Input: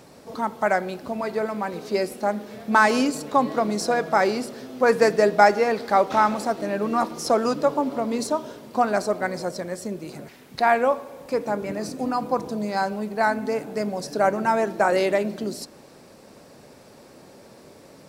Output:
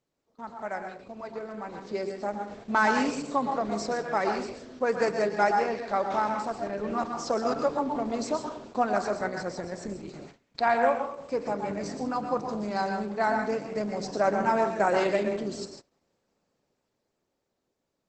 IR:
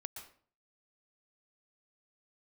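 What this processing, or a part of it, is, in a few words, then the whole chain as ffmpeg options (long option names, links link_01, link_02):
speakerphone in a meeting room: -filter_complex "[0:a]asplit=3[link_01][link_02][link_03];[link_01]afade=type=out:start_time=3.93:duration=0.02[link_04];[link_02]highpass=88,afade=type=in:start_time=3.93:duration=0.02,afade=type=out:start_time=5.4:duration=0.02[link_05];[link_03]afade=type=in:start_time=5.4:duration=0.02[link_06];[link_04][link_05][link_06]amix=inputs=3:normalize=0[link_07];[1:a]atrim=start_sample=2205[link_08];[link_07][link_08]afir=irnorm=-1:irlink=0,dynaudnorm=framelen=230:gausssize=17:maxgain=12dB,agate=range=-20dB:threshold=-36dB:ratio=16:detection=peak,volume=-9dB" -ar 48000 -c:a libopus -b:a 12k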